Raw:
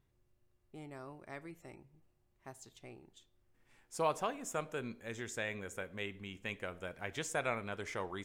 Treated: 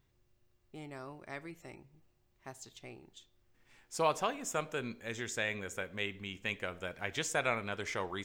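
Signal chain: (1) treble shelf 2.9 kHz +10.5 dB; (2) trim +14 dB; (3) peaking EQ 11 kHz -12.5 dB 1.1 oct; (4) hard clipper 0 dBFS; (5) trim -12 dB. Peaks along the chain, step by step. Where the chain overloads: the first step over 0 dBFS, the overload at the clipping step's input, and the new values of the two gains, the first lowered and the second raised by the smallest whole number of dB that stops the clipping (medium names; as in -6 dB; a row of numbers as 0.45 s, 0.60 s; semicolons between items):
-17.5 dBFS, -3.5 dBFS, -4.0 dBFS, -4.0 dBFS, -16.0 dBFS; nothing clips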